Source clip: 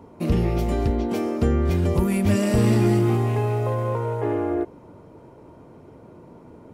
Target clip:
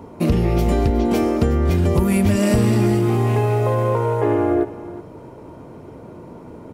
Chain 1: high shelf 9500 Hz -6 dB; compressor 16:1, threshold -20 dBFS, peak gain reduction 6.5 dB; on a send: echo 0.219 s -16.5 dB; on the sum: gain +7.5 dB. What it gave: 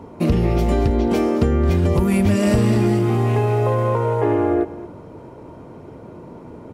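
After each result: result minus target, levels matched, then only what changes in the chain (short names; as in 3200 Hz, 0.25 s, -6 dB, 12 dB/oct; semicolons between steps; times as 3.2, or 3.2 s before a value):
echo 0.146 s early; 8000 Hz band -3.0 dB
change: echo 0.365 s -16.5 dB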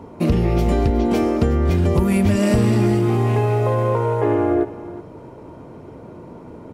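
8000 Hz band -3.0 dB
change: high shelf 9500 Hz +2 dB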